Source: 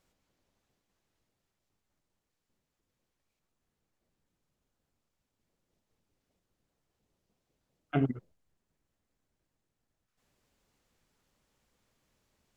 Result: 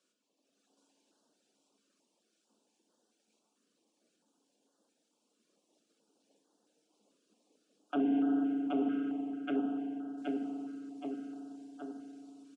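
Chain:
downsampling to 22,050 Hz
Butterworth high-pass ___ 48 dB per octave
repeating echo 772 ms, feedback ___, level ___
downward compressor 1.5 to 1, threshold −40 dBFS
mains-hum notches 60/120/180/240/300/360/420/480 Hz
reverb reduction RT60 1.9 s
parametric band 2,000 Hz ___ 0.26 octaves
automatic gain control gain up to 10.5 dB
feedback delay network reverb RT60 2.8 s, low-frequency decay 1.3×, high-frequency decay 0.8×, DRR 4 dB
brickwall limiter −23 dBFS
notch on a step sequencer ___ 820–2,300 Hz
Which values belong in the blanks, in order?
210 Hz, 58%, −5 dB, −14.5 dB, 4.5 Hz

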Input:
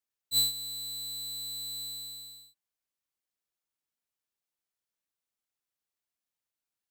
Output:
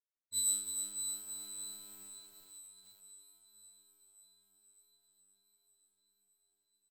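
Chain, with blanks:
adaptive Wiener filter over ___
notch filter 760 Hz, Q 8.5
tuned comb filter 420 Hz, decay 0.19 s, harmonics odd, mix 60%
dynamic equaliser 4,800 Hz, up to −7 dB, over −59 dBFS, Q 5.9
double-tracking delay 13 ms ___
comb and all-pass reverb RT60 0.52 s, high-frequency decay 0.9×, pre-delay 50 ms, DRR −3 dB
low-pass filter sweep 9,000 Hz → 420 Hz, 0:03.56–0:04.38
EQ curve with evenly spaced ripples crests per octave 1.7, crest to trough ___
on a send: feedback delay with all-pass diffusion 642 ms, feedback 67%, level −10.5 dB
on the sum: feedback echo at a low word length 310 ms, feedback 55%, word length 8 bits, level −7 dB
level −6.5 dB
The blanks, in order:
15 samples, −9.5 dB, 8 dB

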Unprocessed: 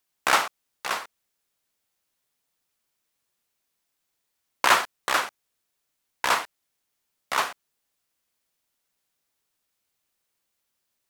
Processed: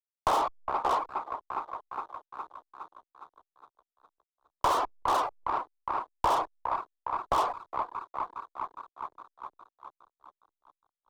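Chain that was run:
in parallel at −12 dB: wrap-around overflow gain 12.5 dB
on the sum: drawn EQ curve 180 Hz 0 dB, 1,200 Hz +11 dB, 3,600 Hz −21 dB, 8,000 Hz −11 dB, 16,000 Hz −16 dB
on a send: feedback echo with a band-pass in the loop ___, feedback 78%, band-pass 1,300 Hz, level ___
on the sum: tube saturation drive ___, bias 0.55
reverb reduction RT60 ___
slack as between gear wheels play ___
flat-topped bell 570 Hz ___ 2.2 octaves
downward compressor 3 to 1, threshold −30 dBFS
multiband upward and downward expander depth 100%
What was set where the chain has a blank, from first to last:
411 ms, −18 dB, 26 dB, 0.58 s, −45 dBFS, +14 dB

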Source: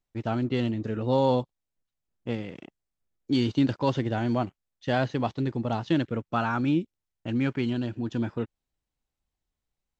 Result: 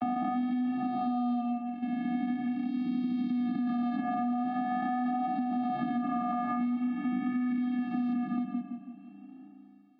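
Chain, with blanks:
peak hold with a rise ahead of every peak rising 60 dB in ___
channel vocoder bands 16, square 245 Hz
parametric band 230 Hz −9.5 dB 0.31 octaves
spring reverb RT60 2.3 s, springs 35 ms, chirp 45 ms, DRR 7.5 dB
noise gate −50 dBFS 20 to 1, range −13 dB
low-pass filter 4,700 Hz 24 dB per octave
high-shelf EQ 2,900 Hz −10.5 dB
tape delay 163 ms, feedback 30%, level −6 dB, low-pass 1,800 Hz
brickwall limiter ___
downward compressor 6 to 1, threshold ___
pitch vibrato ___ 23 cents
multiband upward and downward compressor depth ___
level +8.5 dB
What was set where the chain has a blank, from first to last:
2.20 s, −26.5 dBFS, −36 dBFS, 0.44 Hz, 100%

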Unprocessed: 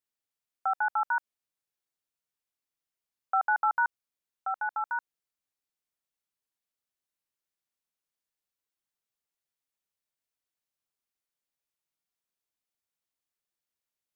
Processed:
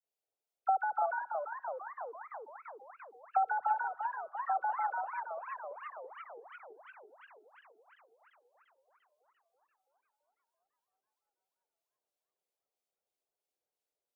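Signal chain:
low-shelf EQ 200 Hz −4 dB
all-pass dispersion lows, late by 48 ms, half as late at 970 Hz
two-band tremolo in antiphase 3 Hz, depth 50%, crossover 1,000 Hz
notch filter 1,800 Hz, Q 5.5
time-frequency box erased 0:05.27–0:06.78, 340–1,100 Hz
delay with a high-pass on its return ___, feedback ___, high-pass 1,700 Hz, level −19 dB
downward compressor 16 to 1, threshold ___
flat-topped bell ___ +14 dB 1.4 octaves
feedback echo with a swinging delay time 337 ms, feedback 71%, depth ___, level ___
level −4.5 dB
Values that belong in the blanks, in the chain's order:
83 ms, 75%, −30 dBFS, 540 Hz, 217 cents, −7 dB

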